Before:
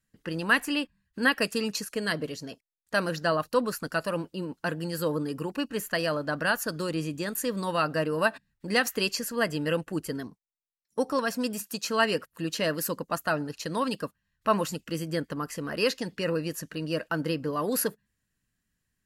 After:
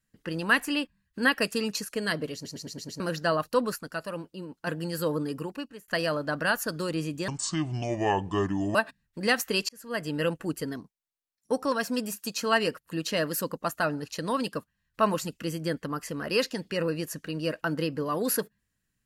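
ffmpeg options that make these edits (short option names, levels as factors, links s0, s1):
-filter_complex "[0:a]asplit=13[s0][s1][s2][s3][s4][s5][s6][s7][s8][s9][s10][s11][s12];[s0]atrim=end=2.452[s13];[s1]atrim=start=2.338:end=2.452[s14];[s2]atrim=start=2.338:end=2.452[s15];[s3]atrim=start=2.338:end=2.452[s16];[s4]atrim=start=2.338:end=2.452[s17];[s5]atrim=start=2.338:end=2.452[s18];[s6]atrim=start=2.998:end=3.762[s19];[s7]atrim=start=3.758:end=4.672,asetpts=PTS-STARTPTS,volume=0.531[s20];[s8]atrim=start=4.668:end=5.88,asetpts=PTS-STARTPTS,afade=t=out:st=0.662:d=0.55[s21];[s9]atrim=start=5.88:end=7.284,asetpts=PTS-STARTPTS,afade=t=in:d=0.004:c=hsin[s22];[s10]atrim=start=7.28:end=8.22,asetpts=PTS-STARTPTS,asetrate=28224,aresample=44100[s23];[s11]atrim=start=8.216:end=9.16,asetpts=PTS-STARTPTS,afade=t=out:st=0.94:d=0.004:c=hsin[s24];[s12]atrim=start=9.16,asetpts=PTS-STARTPTS,afade=t=in:d=0.49[s25];[s13][s14]acrossfade=d=0.004:c1=hsin:c2=hsin[s26];[s26][s15]acrossfade=d=0.004:c1=hsin:c2=hsin[s27];[s27][s16]acrossfade=d=0.004:c1=hsin:c2=hsin[s28];[s28][s17]acrossfade=d=0.004:c1=hsin:c2=hsin[s29];[s29][s18]acrossfade=d=0.004:c1=hsin:c2=hsin[s30];[s30][s19]acrossfade=d=0.004:c1=hsin:c2=hsin[s31];[s31][s20]acrossfade=d=0.004:c1=hsin:c2=hsin[s32];[s21][s22]concat=n=2:v=0:a=1[s33];[s32][s33]acrossfade=d=0.004:c1=hsin:c2=hsin[s34];[s34][s23]acrossfade=d=0.004:c1=hsin:c2=hsin[s35];[s24][s25]concat=n=2:v=0:a=1[s36];[s35][s36]acrossfade=d=0.004:c1=hsin:c2=hsin"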